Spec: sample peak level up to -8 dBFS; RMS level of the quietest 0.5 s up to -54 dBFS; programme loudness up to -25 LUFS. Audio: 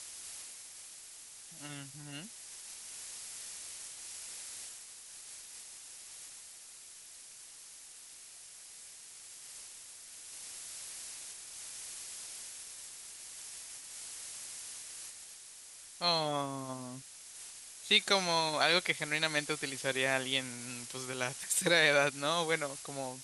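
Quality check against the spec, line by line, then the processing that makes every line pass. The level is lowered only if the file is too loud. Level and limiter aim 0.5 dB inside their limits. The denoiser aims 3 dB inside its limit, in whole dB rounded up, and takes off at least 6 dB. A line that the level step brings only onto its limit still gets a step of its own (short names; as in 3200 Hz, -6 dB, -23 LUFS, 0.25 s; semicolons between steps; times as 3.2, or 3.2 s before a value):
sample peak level -12.0 dBFS: OK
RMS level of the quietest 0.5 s -52 dBFS: fail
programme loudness -34.5 LUFS: OK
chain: denoiser 6 dB, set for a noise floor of -52 dBFS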